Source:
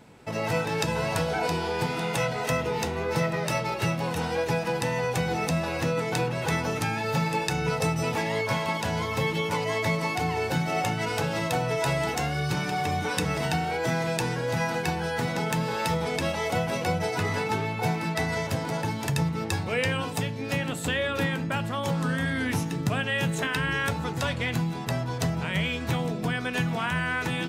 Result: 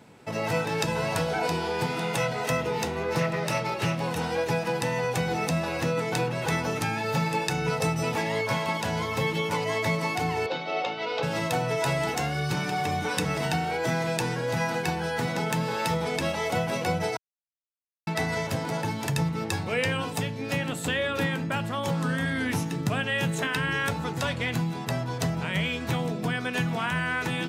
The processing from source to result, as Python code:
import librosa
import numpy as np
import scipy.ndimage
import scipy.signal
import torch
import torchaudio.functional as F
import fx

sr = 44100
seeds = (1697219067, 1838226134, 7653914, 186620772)

y = fx.doppler_dist(x, sr, depth_ms=0.16, at=(3.03, 4.02))
y = fx.cabinet(y, sr, low_hz=400.0, low_slope=12, high_hz=4400.0, hz=(510.0, 800.0, 1700.0, 3700.0), db=(6, -3, -9, 4), at=(10.46, 11.23))
y = fx.edit(y, sr, fx.silence(start_s=17.17, length_s=0.9), tone=tone)
y = scipy.signal.sosfilt(scipy.signal.butter(2, 90.0, 'highpass', fs=sr, output='sos'), y)